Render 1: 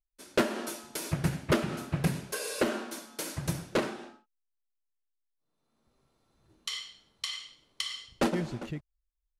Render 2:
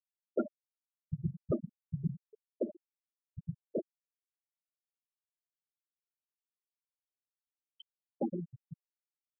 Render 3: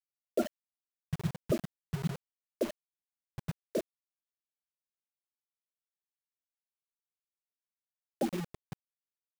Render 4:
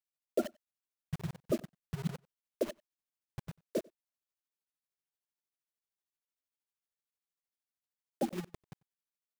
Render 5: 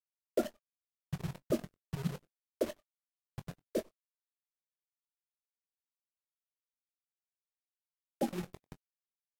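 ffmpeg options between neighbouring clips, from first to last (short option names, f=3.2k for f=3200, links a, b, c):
-af "afftfilt=real='re*gte(hypot(re,im),0.2)':imag='im*gte(hypot(re,im),0.2)':win_size=1024:overlap=0.75,volume=-5dB"
-af "equalizer=f=700:t=o:w=0.22:g=11.5,acrusher=bits=6:mix=0:aa=0.000001,volume=1.5dB"
-filter_complex "[0:a]tremolo=f=13:d=0.65,asplit=2[a][b];[b]adelay=93.29,volume=-27dB,highshelf=f=4k:g=-2.1[c];[a][c]amix=inputs=2:normalize=0"
-filter_complex "[0:a]acrusher=bits=8:dc=4:mix=0:aa=0.000001,asplit=2[a][b];[b]adelay=22,volume=-13dB[c];[a][c]amix=inputs=2:normalize=0" -ar 48000 -c:a libvorbis -b:a 64k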